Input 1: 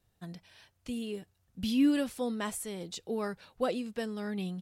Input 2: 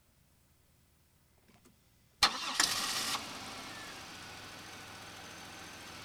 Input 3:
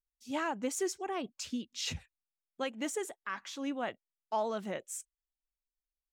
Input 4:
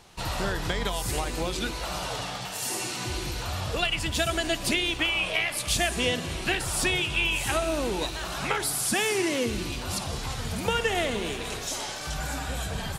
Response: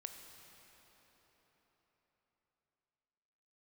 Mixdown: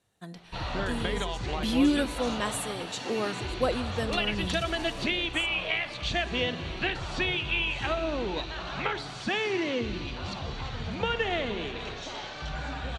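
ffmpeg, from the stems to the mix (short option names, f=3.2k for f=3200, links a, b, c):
-filter_complex "[0:a]highpass=f=260:p=1,volume=2dB,asplit=2[a][b];[b]volume=-3.5dB[c];[1:a]adelay=1900,volume=-12dB[d];[2:a]acompressor=threshold=-35dB:ratio=6,adelay=450,volume=-6dB[e];[3:a]lowpass=f=4.6k:w=0.5412,lowpass=f=4.6k:w=1.3066,adelay=350,volume=-2.5dB[f];[4:a]atrim=start_sample=2205[g];[c][g]afir=irnorm=-1:irlink=0[h];[a][d][e][f][h]amix=inputs=5:normalize=0,lowpass=f=11k:w=0.5412,lowpass=f=11k:w=1.3066,bandreject=f=5.1k:w=8.7"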